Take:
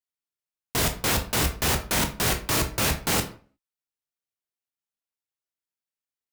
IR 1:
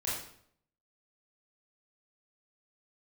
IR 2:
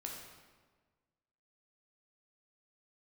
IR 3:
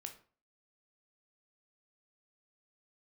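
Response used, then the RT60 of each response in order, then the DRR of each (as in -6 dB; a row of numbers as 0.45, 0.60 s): 3; 0.65, 1.4, 0.40 s; -8.0, -1.5, 4.5 dB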